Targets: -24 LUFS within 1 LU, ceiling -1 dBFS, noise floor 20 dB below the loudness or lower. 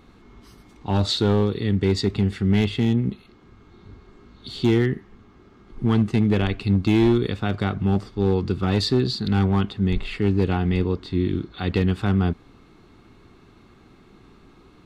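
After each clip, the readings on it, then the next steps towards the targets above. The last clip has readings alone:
clipped samples 1.0%; clipping level -12.0 dBFS; loudness -22.5 LUFS; peak level -12.0 dBFS; loudness target -24.0 LUFS
-> clip repair -12 dBFS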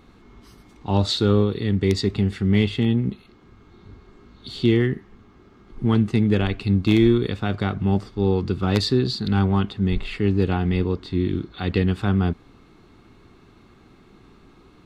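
clipped samples 0.0%; loudness -22.0 LUFS; peak level -3.0 dBFS; loudness target -24.0 LUFS
-> trim -2 dB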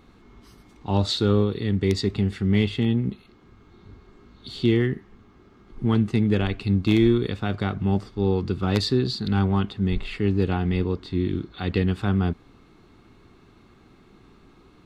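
loudness -24.0 LUFS; peak level -5.0 dBFS; noise floor -54 dBFS

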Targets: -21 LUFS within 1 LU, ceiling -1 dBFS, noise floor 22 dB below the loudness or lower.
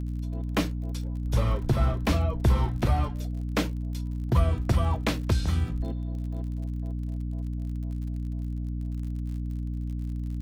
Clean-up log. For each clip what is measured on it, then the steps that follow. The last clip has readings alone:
tick rate 45 per s; hum 60 Hz; highest harmonic 300 Hz; hum level -29 dBFS; loudness -29.5 LUFS; peak level -11.5 dBFS; loudness target -21.0 LUFS
-> de-click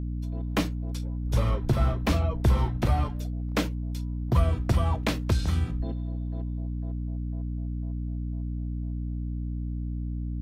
tick rate 0.29 per s; hum 60 Hz; highest harmonic 300 Hz; hum level -29 dBFS
-> hum notches 60/120/180/240/300 Hz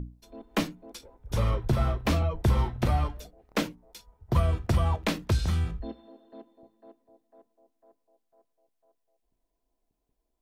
hum not found; loudness -28.5 LUFS; peak level -13.0 dBFS; loudness target -21.0 LUFS
-> trim +7.5 dB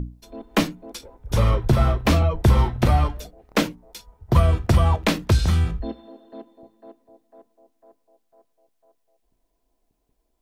loudness -21.0 LUFS; peak level -5.5 dBFS; noise floor -72 dBFS

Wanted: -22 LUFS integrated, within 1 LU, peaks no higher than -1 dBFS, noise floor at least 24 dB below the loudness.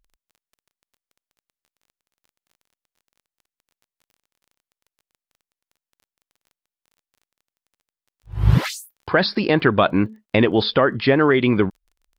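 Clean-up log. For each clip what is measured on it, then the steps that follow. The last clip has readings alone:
tick rate 21 per s; loudness -19.0 LUFS; peak level -2.0 dBFS; loudness target -22.0 LUFS
-> de-click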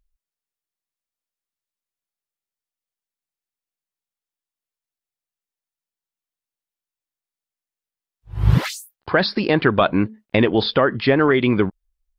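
tick rate 0 per s; loudness -19.0 LUFS; peak level -2.0 dBFS; loudness target -22.0 LUFS
-> trim -3 dB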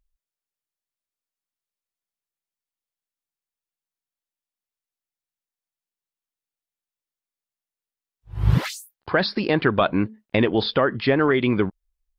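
loudness -22.0 LUFS; peak level -5.0 dBFS; noise floor -92 dBFS

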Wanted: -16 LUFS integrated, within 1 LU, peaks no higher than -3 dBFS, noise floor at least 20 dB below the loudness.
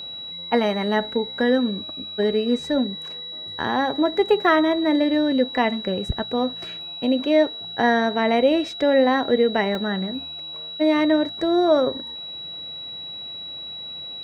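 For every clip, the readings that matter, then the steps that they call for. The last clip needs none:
dropouts 1; longest dropout 1.4 ms; steady tone 3.9 kHz; tone level -32 dBFS; loudness -22.0 LUFS; peak level -6.5 dBFS; loudness target -16.0 LUFS
-> interpolate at 9.75 s, 1.4 ms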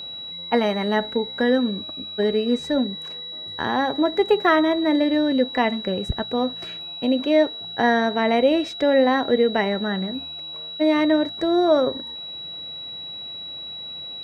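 dropouts 0; steady tone 3.9 kHz; tone level -32 dBFS
-> band-stop 3.9 kHz, Q 30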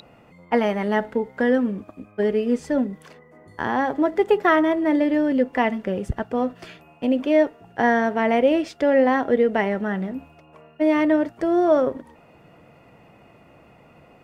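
steady tone not found; loudness -21.5 LUFS; peak level -7.0 dBFS; loudness target -16.0 LUFS
-> trim +5.5 dB; peak limiter -3 dBFS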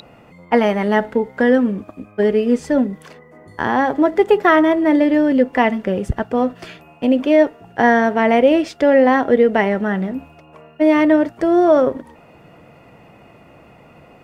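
loudness -16.0 LUFS; peak level -3.0 dBFS; noise floor -47 dBFS

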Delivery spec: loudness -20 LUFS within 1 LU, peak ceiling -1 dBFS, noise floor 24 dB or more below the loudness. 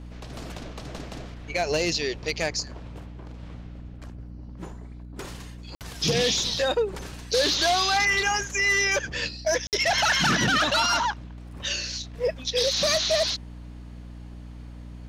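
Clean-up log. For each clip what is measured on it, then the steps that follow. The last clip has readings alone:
dropouts 2; longest dropout 58 ms; hum 60 Hz; highest harmonic 300 Hz; hum level -38 dBFS; loudness -23.5 LUFS; peak level -15.5 dBFS; loudness target -20.0 LUFS
-> interpolate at 5.75/9.67 s, 58 ms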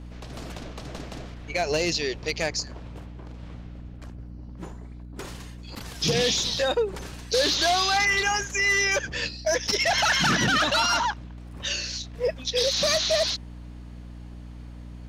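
dropouts 0; hum 60 Hz; highest harmonic 300 Hz; hum level -38 dBFS
-> de-hum 60 Hz, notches 5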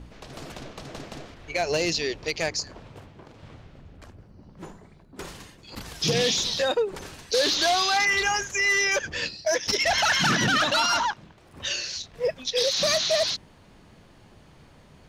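hum not found; loudness -23.5 LUFS; peak level -11.0 dBFS; loudness target -20.0 LUFS
-> trim +3.5 dB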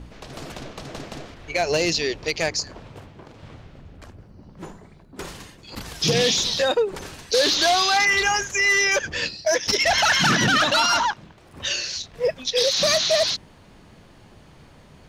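loudness -20.0 LUFS; peak level -7.5 dBFS; noise floor -50 dBFS

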